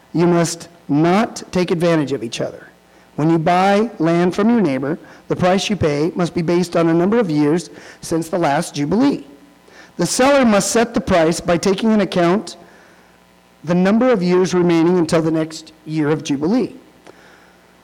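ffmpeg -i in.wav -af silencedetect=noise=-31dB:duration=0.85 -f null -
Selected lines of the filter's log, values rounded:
silence_start: 12.69
silence_end: 13.64 | silence_duration: 0.95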